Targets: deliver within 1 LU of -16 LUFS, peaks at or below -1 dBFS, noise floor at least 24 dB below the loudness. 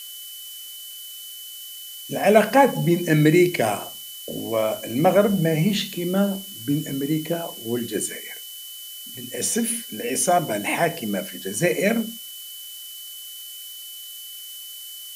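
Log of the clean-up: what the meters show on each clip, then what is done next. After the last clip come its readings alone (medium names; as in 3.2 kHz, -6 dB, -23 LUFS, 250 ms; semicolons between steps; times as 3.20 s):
steady tone 3 kHz; tone level -39 dBFS; noise floor -38 dBFS; noise floor target -46 dBFS; loudness -22.0 LUFS; peak level -3.0 dBFS; loudness target -16.0 LUFS
-> band-stop 3 kHz, Q 30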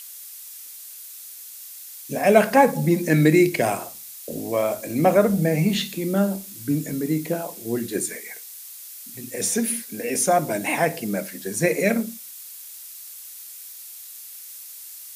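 steady tone not found; noise floor -40 dBFS; noise floor target -46 dBFS
-> noise reduction 6 dB, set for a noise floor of -40 dBFS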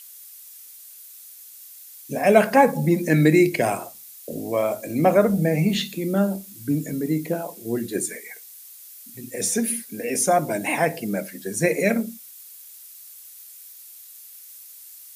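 noise floor -44 dBFS; noise floor target -46 dBFS
-> noise reduction 6 dB, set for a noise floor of -44 dBFS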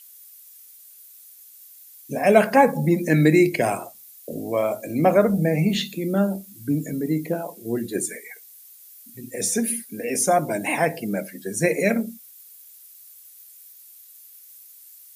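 noise floor -48 dBFS; loudness -22.0 LUFS; peak level -3.0 dBFS; loudness target -16.0 LUFS
-> trim +6 dB; peak limiter -1 dBFS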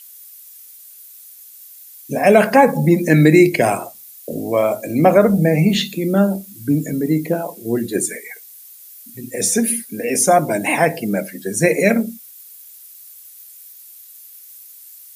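loudness -16.5 LUFS; peak level -1.0 dBFS; noise floor -42 dBFS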